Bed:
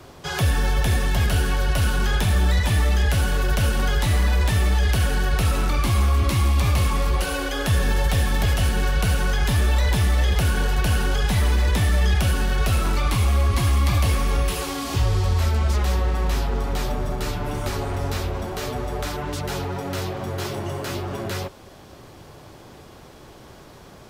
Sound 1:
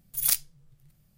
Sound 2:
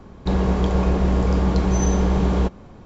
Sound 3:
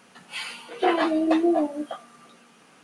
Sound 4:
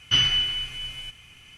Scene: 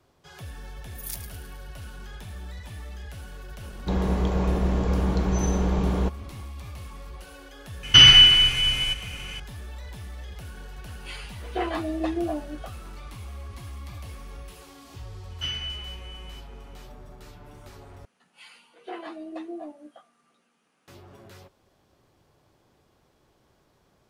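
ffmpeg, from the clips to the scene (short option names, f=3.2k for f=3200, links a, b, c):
-filter_complex "[4:a]asplit=2[a][b];[3:a]asplit=2[c][d];[0:a]volume=-20dB[e];[1:a]asplit=7[f][g][h][i][j][k][l];[g]adelay=106,afreqshift=-140,volume=-11dB[m];[h]adelay=212,afreqshift=-280,volume=-15.9dB[n];[i]adelay=318,afreqshift=-420,volume=-20.8dB[o];[j]adelay=424,afreqshift=-560,volume=-25.6dB[p];[k]adelay=530,afreqshift=-700,volume=-30.5dB[q];[l]adelay=636,afreqshift=-840,volume=-35.4dB[r];[f][m][n][o][p][q][r]amix=inputs=7:normalize=0[s];[2:a]bandreject=f=4.9k:w=21[t];[a]alimiter=level_in=12.5dB:limit=-1dB:release=50:level=0:latency=1[u];[b]aresample=32000,aresample=44100[v];[e]asplit=2[w][x];[w]atrim=end=18.054[y];[d]atrim=end=2.83,asetpts=PTS-STARTPTS,volume=-16dB[z];[x]atrim=start=20.876[aa];[s]atrim=end=1.17,asetpts=PTS-STARTPTS,volume=-12.5dB,afade=t=in:d=0.004:c=hsin,afade=t=out:st=1.166:d=0.004:c=hsin,adelay=810[ab];[t]atrim=end=2.85,asetpts=PTS-STARTPTS,volume=-5dB,afade=t=in:d=0.004:c=hsin,afade=t=out:st=2.846:d=0.004:c=hsin,adelay=159201S[ac];[u]atrim=end=1.57,asetpts=PTS-STARTPTS,volume=-1dB,afade=t=in:d=0.004:c=hsin,afade=t=out:st=1.566:d=0.004:c=hsin,adelay=7830[ad];[c]atrim=end=2.83,asetpts=PTS-STARTPTS,volume=-7dB,afade=t=in:d=0.004:c=hsin,afade=t=out:st=2.826:d=0.004:c=hsin,adelay=10730[ae];[v]atrim=end=1.57,asetpts=PTS-STARTPTS,volume=-11.5dB,afade=t=in:d=0.004:c=hsin,afade=t=out:st=1.566:d=0.004:c=hsin,adelay=15300[af];[y][z]acrossfade=d=0.004:c1=hsin:c2=hsin[ag];[ag][aa]acrossfade=d=0.004:c1=hsin:c2=hsin[ah];[ah][ab][ac][ad][ae][af]amix=inputs=6:normalize=0"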